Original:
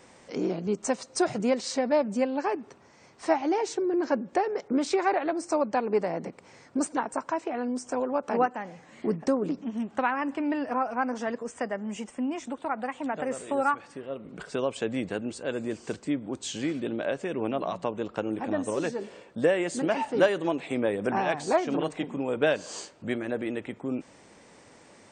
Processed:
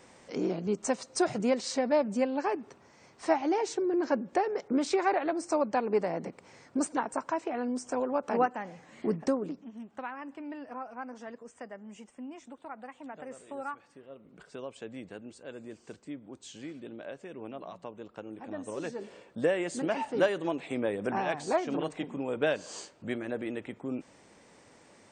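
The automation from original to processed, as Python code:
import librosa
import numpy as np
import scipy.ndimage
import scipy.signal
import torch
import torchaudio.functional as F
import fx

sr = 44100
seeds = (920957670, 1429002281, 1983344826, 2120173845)

y = fx.gain(x, sr, db=fx.line((9.27, -2.0), (9.69, -12.5), (18.36, -12.5), (19.12, -4.0)))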